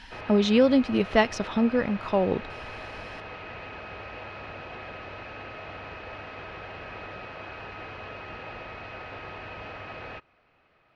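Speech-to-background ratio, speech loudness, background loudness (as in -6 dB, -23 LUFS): 15.5 dB, -24.0 LUFS, -39.5 LUFS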